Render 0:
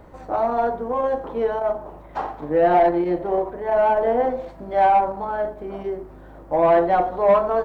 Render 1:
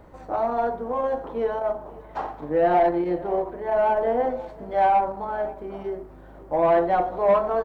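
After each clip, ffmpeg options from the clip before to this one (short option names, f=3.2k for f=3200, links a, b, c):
-af "aecho=1:1:538:0.0841,volume=-3dB"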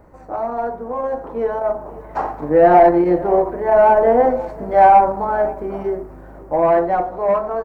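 -af "equalizer=f=3.4k:t=o:w=0.62:g=-12,dynaudnorm=f=510:g=7:m=11.5dB,volume=1dB"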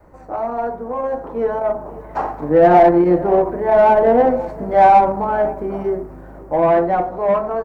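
-filter_complex "[0:a]adynamicequalizer=threshold=0.0398:dfrequency=180:dqfactor=0.83:tfrequency=180:tqfactor=0.83:attack=5:release=100:ratio=0.375:range=2.5:mode=boostabove:tftype=bell,asplit=2[a][b];[b]asoftclip=type=tanh:threshold=-15.5dB,volume=-11.5dB[c];[a][c]amix=inputs=2:normalize=0,volume=-1.5dB"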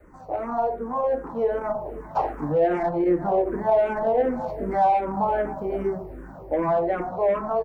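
-filter_complex "[0:a]acompressor=threshold=-16dB:ratio=6,asplit=2[a][b];[b]afreqshift=-2.6[c];[a][c]amix=inputs=2:normalize=1"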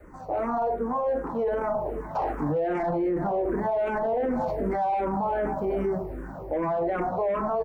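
-af "alimiter=limit=-23dB:level=0:latency=1:release=12,volume=3dB"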